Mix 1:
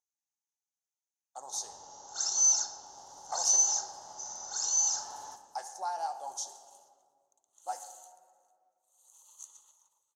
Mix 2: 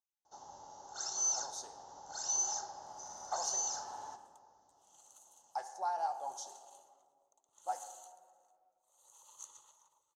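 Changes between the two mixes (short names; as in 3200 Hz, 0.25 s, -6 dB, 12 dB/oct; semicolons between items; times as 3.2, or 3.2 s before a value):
first sound: entry -1.20 s; second sound +7.0 dB; master: add high shelf 3700 Hz -12 dB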